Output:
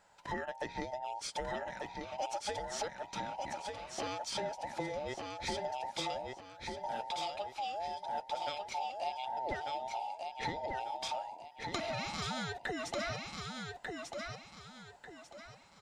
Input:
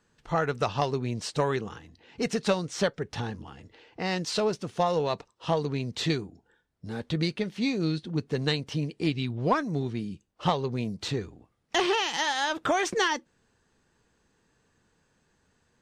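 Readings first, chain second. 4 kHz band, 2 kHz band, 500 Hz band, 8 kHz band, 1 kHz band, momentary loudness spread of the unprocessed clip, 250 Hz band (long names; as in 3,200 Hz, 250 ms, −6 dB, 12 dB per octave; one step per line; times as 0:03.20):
−9.0 dB, −9.5 dB, −11.0 dB, −7.0 dB, −5.0 dB, 9 LU, −16.0 dB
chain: frequency inversion band by band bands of 1,000 Hz
downward compressor 6 to 1, threshold −40 dBFS, peak gain reduction 19.5 dB
on a send: repeating echo 1,193 ms, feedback 33%, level −4 dB
on the sum: level +2.5 dB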